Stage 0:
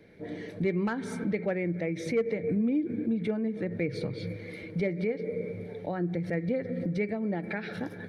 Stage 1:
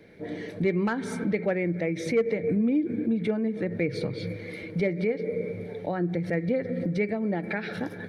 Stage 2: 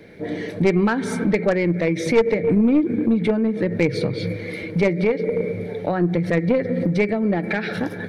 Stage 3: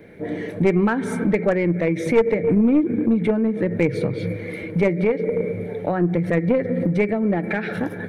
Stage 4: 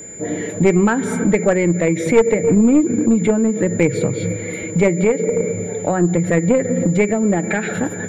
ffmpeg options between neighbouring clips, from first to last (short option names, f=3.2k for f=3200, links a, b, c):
-af "lowshelf=f=180:g=-3,volume=4dB"
-af "aeval=exprs='0.188*(cos(1*acos(clip(val(0)/0.188,-1,1)))-cos(1*PI/2))+0.0335*(cos(4*acos(clip(val(0)/0.188,-1,1)))-cos(4*PI/2))+0.00422*(cos(5*acos(clip(val(0)/0.188,-1,1)))-cos(5*PI/2))+0.0211*(cos(6*acos(clip(val(0)/0.188,-1,1)))-cos(6*PI/2))+0.00299*(cos(8*acos(clip(val(0)/0.188,-1,1)))-cos(8*PI/2))':c=same,volume=7dB"
-af "equalizer=f=4.7k:t=o:w=0.96:g=-11"
-af "aeval=exprs='val(0)+0.0141*sin(2*PI*7100*n/s)':c=same,volume=4dB"